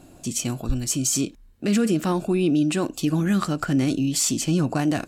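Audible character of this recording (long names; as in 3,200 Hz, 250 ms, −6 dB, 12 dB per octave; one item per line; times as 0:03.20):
background noise floor −50 dBFS
spectral slope −4.5 dB per octave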